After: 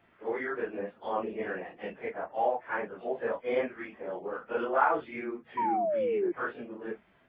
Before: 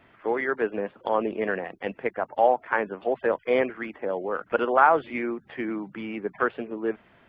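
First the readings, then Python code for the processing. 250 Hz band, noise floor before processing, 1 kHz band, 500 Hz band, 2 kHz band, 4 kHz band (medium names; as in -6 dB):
-7.0 dB, -59 dBFS, -6.0 dB, -5.5 dB, -7.5 dB, no reading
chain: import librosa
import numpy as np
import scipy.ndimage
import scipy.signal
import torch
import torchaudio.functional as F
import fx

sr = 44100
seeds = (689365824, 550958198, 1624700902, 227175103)

y = fx.phase_scramble(x, sr, seeds[0], window_ms=100)
y = fx.spec_paint(y, sr, seeds[1], shape='fall', start_s=5.57, length_s=0.75, low_hz=340.0, high_hz=1000.0, level_db=-21.0)
y = y * 10.0 ** (-7.5 / 20.0)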